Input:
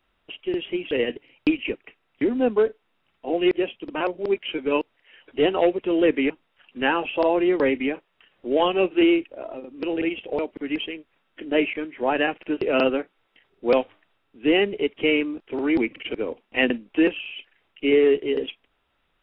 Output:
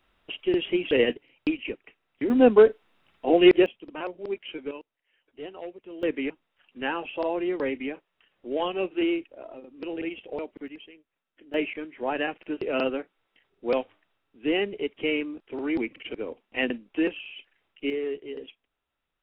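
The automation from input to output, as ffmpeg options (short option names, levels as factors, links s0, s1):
-af "asetnsamples=n=441:p=0,asendcmd='1.13 volume volume -5.5dB;2.3 volume volume 4.5dB;3.66 volume volume -8.5dB;4.71 volume volume -19dB;6.03 volume volume -7.5dB;10.68 volume volume -17dB;11.54 volume volume -6dB;17.9 volume volume -13dB',volume=1.26"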